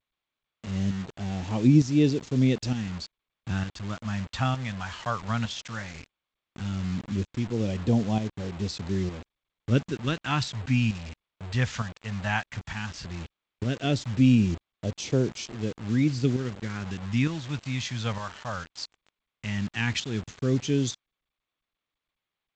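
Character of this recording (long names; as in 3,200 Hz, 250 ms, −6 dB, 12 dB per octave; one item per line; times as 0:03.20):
phaser sweep stages 2, 0.15 Hz, lowest notch 340–1,400 Hz
tremolo saw up 1.1 Hz, depth 60%
a quantiser's noise floor 8 bits, dither none
G.722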